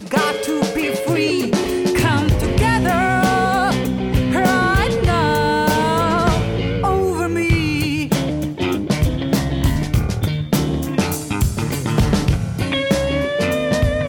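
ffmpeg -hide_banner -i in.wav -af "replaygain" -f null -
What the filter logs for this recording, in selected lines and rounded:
track_gain = +0.9 dB
track_peak = 0.356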